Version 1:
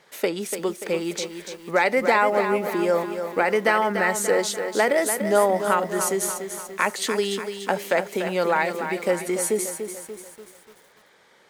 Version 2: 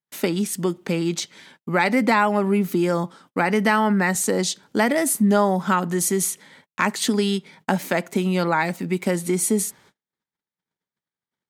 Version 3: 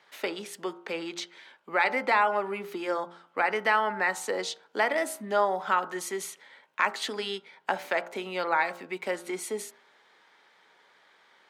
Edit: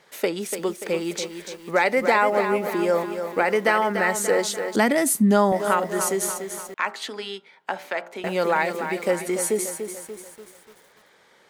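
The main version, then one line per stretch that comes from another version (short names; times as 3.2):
1
4.76–5.52 from 2
6.74–8.24 from 3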